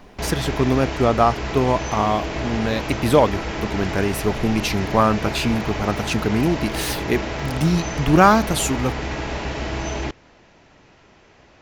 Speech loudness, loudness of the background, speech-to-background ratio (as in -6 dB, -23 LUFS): -21.0 LUFS, -27.5 LUFS, 6.5 dB